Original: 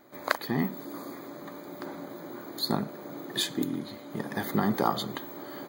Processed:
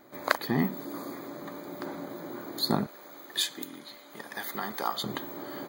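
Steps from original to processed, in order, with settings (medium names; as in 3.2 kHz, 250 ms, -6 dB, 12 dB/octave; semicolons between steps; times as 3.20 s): 2.86–5.04 s: high-pass 1.5 kHz 6 dB/octave; trim +1.5 dB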